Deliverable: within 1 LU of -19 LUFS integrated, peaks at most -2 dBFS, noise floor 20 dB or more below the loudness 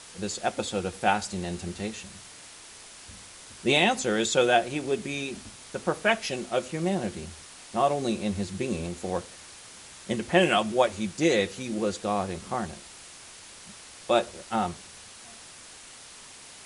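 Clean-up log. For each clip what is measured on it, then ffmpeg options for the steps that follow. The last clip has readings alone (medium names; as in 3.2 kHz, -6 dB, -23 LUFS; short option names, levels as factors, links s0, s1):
noise floor -47 dBFS; noise floor target -48 dBFS; loudness -27.5 LUFS; peak level -7.0 dBFS; loudness target -19.0 LUFS
-> -af "afftdn=nr=6:nf=-47"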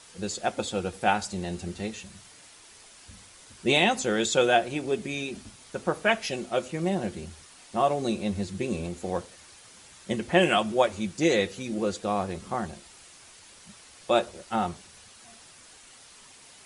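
noise floor -52 dBFS; loudness -27.5 LUFS; peak level -7.0 dBFS; loudness target -19.0 LUFS
-> -af "volume=2.66,alimiter=limit=0.794:level=0:latency=1"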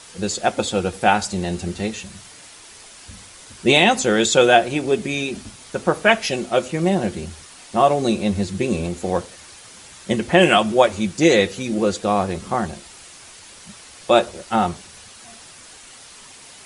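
loudness -19.5 LUFS; peak level -2.0 dBFS; noise floor -43 dBFS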